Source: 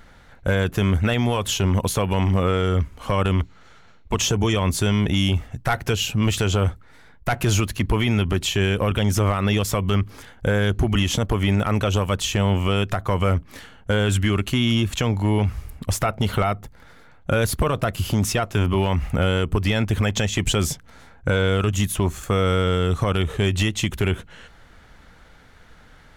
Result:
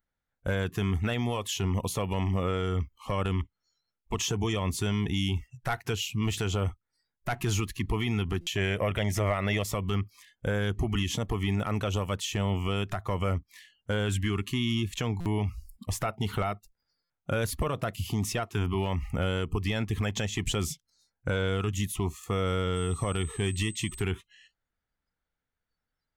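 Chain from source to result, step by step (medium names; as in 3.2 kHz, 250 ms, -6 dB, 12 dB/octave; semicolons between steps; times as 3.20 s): 8.57–9.64 s: graphic EQ with 31 bands 250 Hz -5 dB, 630 Hz +9 dB, 2 kHz +11 dB; 22.75–24.01 s: whistle 8.2 kHz -35 dBFS; spectral noise reduction 29 dB; buffer glitch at 8.41/15.20/17.04 s, samples 256, times 9; trim -8.5 dB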